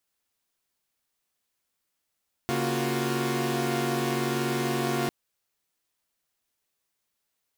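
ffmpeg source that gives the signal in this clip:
-f lavfi -i "aevalsrc='0.0376*((2*mod(138.59*t,1)-1)+(2*mod(233.08*t,1)-1)+(2*mod(349.23*t,1)-1)+(2*mod(369.99*t,1)-1))':d=2.6:s=44100"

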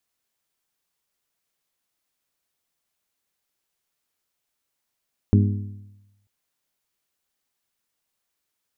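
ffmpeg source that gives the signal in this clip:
-f lavfi -i "aevalsrc='0.251*pow(10,-3*t/1.01)*sin(2*PI*101*t)+0.158*pow(10,-3*t/0.82)*sin(2*PI*202*t)+0.1*pow(10,-3*t/0.777)*sin(2*PI*242.4*t)+0.0631*pow(10,-3*t/0.726)*sin(2*PI*303*t)+0.0398*pow(10,-3*t/0.666)*sin(2*PI*404*t)':d=0.94:s=44100"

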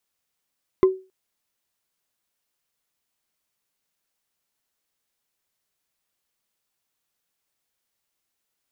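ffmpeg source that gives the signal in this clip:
-f lavfi -i "aevalsrc='0.376*pow(10,-3*t/0.3)*sin(2*PI*377*t)+0.1*pow(10,-3*t/0.089)*sin(2*PI*1039.4*t)+0.0266*pow(10,-3*t/0.04)*sin(2*PI*2037.3*t)+0.00708*pow(10,-3*t/0.022)*sin(2*PI*3367.7*t)+0.00188*pow(10,-3*t/0.013)*sin(2*PI*5029.2*t)':d=0.27:s=44100"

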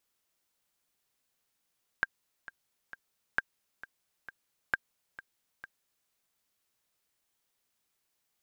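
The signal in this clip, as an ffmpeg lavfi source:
-f lavfi -i "aevalsrc='pow(10,(-13-17.5*gte(mod(t,3*60/133),60/133))/20)*sin(2*PI*1590*mod(t,60/133))*exp(-6.91*mod(t,60/133)/0.03)':d=4.06:s=44100"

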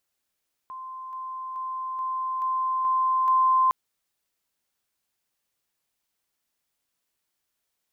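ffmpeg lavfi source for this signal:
-f lavfi -i "aevalsrc='pow(10,(-35+3*floor(t/0.43))/20)*sin(2*PI*1040*t)':d=3.01:s=44100"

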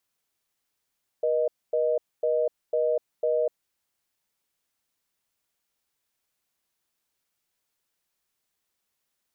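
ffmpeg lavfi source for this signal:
-f lavfi -i "aevalsrc='0.0631*(sin(2*PI*480*t)+sin(2*PI*620*t))*clip(min(mod(t,0.5),0.25-mod(t,0.5))/0.005,0,1)':d=2.45:s=44100"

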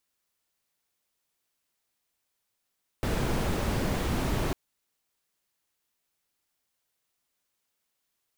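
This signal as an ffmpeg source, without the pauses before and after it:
-f lavfi -i "anoisesrc=c=brown:a=0.197:d=1.5:r=44100:seed=1"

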